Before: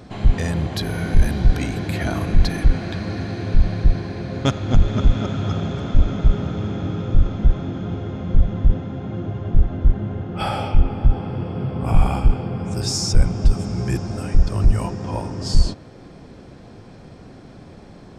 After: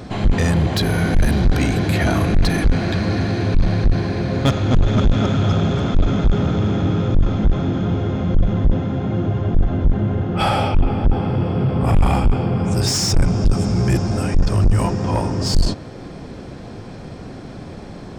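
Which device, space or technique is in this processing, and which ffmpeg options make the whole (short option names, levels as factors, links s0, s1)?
saturation between pre-emphasis and de-emphasis: -af "highshelf=f=4100:g=10.5,asoftclip=type=tanh:threshold=0.133,highshelf=f=4100:g=-10.5,volume=2.51"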